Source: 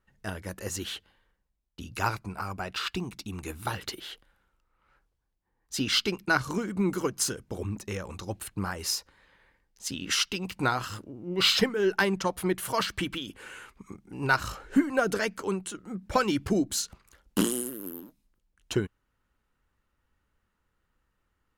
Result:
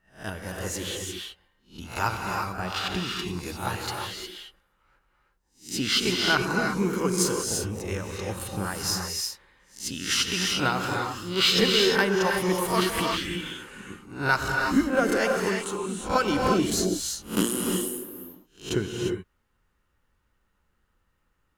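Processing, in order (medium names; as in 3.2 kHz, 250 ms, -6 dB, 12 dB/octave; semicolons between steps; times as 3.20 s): reverse spectral sustain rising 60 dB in 0.32 s; gated-style reverb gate 380 ms rising, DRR 1 dB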